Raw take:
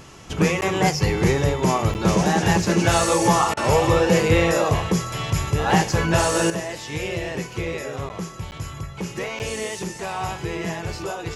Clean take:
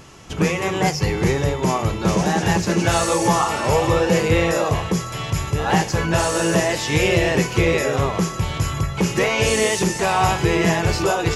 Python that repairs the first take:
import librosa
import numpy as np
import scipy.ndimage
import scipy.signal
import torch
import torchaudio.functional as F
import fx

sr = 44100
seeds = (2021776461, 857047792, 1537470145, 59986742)

y = fx.fix_interpolate(x, sr, at_s=(0.61, 1.94, 8.09, 8.51, 9.39), length_ms=9.5)
y = fx.fix_interpolate(y, sr, at_s=(3.54,), length_ms=29.0)
y = fx.fix_level(y, sr, at_s=6.5, step_db=10.0)